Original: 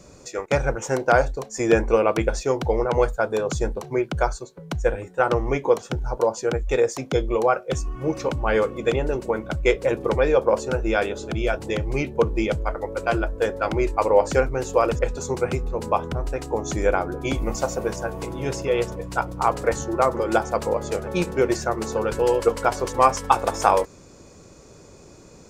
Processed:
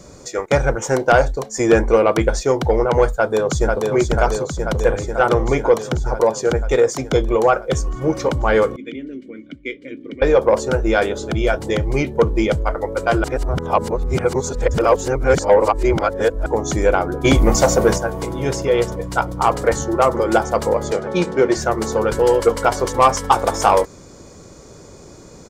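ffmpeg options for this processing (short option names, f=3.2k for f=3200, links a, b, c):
-filter_complex "[0:a]asplit=2[a][b];[b]afade=t=in:st=3.11:d=0.01,afade=t=out:st=3.93:d=0.01,aecho=0:1:490|980|1470|1960|2450|2940|3430|3920|4410|4900|5390|5880:0.668344|0.501258|0.375943|0.281958|0.211468|0.158601|0.118951|0.0892131|0.0669099|0.0501824|0.0376368|0.0282276[c];[a][c]amix=inputs=2:normalize=0,asettb=1/sr,asplit=3[d][e][f];[d]atrim=end=8.764[g];[e]atrim=start=8.76:end=10.22,asetpts=PTS-STARTPTS,afade=t=in:d=0.004:c=qsin,afade=t=out:st=1.456:d=0.004:c=qsin,asplit=3[h][i][j];[h]bandpass=f=270:t=q:w=8,volume=0dB[k];[i]bandpass=f=2.29k:t=q:w=8,volume=-6dB[l];[j]bandpass=f=3.01k:t=q:w=8,volume=-9dB[m];[k][l][m]amix=inputs=3:normalize=0[n];[f]atrim=start=10.216[o];[g][n]acrossfade=d=0.004:c1=hsin:c2=qsin[p];[p][o]acrossfade=d=0.004:c1=qsin:c2=hsin,asettb=1/sr,asplit=3[q][r][s];[q]atrim=end=17.244[t];[r]atrim=start=17.24:end=17.98,asetpts=PTS-STARTPTS,afade=t=in:d=0.004:c=qsin,afade=t=out:st=0.736:d=0.004:c=qsin,acontrast=82[u];[s]atrim=start=17.976[v];[t][u]acrossfade=d=0.004:c1=hsin:c2=qsin[w];[w][v]acrossfade=d=0.004:c1=qsin:c2=hsin,asettb=1/sr,asplit=3[x][y][z];[x]atrim=end=20.924[aa];[y]atrim=start=20.92:end=21.57,asetpts=PTS-STARTPTS,afade=t=in:d=0.004:c=qsin,afade=t=out:st=0.646:d=0.004:c=qsin,highpass=140,lowpass=6.1k[ab];[z]atrim=start=21.566[ac];[aa][ab]acrossfade=d=0.004:c1=hsin:c2=qsin[ad];[ad][ac]acrossfade=d=0.004:c1=qsin:c2=hsin,asplit=3[ae][af][ag];[ae]atrim=end=13.242[ah];[af]atrim=start=13.238:end=16.462,asetpts=PTS-STARTPTS,areverse[ai];[ag]atrim=start=16.458[aj];[ah][ai]acrossfade=d=0.004:c1=hsin:c2=hsin[ak];[ak][aj]acrossfade=d=0.004:c1=hsin:c2=hsin,bandreject=f=2.6k:w=8.5,acontrast=82,volume=-1dB"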